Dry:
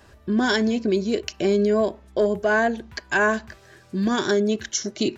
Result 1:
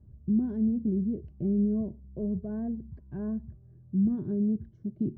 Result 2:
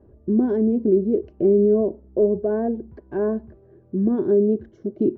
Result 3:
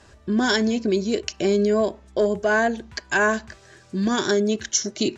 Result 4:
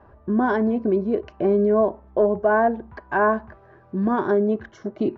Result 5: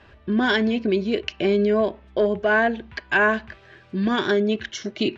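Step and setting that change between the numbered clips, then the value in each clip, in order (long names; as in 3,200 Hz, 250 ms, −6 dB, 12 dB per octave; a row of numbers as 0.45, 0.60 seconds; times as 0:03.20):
low-pass with resonance, frequency: 150, 390, 7,500, 1,000, 2,900 Hertz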